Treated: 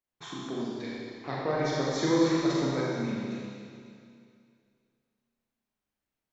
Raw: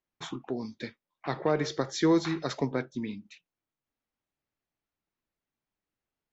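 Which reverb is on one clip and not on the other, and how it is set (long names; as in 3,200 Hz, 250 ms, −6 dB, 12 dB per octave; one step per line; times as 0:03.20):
four-comb reverb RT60 2.4 s, combs from 30 ms, DRR −6 dB
level −5.5 dB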